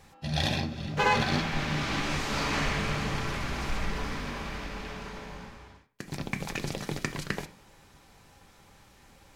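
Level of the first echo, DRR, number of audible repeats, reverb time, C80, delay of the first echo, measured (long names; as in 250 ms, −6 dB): no echo audible, 5.0 dB, no echo audible, 0.50 s, 19.5 dB, no echo audible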